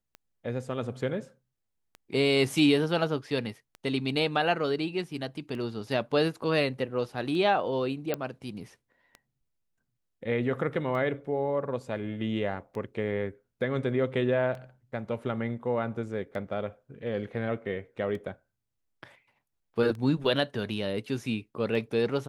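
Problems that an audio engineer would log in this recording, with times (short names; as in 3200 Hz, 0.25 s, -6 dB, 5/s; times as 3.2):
tick 33 1/3 rpm -28 dBFS
8.14 pop -15 dBFS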